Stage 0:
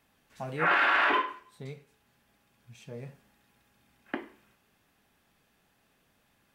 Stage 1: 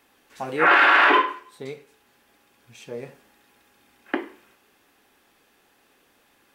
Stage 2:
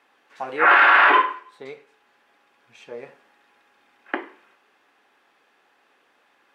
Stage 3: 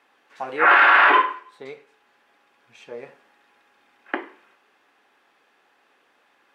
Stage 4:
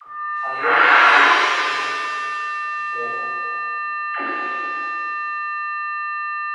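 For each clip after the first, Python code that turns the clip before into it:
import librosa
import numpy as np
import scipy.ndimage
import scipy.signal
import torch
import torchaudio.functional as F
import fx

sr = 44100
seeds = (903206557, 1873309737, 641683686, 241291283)

y1 = fx.low_shelf_res(x, sr, hz=230.0, db=-9.0, q=1.5)
y1 = fx.notch(y1, sr, hz=640.0, q=12.0)
y1 = F.gain(torch.from_numpy(y1), 8.5).numpy()
y2 = fx.bandpass_q(y1, sr, hz=1200.0, q=0.59)
y2 = F.gain(torch.from_numpy(y2), 2.5).numpy()
y3 = y2
y4 = y3 + 10.0 ** (-26.0 / 20.0) * np.sin(2.0 * np.pi * 1200.0 * np.arange(len(y3)) / sr)
y4 = fx.dispersion(y4, sr, late='lows', ms=77.0, hz=570.0)
y4 = fx.rev_shimmer(y4, sr, seeds[0], rt60_s=2.2, semitones=7, shimmer_db=-8, drr_db=-9.5)
y4 = F.gain(torch.from_numpy(y4), -8.5).numpy()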